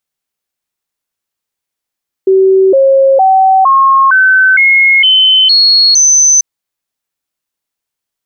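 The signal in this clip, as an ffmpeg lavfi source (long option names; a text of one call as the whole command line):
ffmpeg -f lavfi -i "aevalsrc='0.668*clip(min(mod(t,0.46),0.46-mod(t,0.46))/0.005,0,1)*sin(2*PI*382*pow(2,floor(t/0.46)/2)*mod(t,0.46))':duration=4.14:sample_rate=44100" out.wav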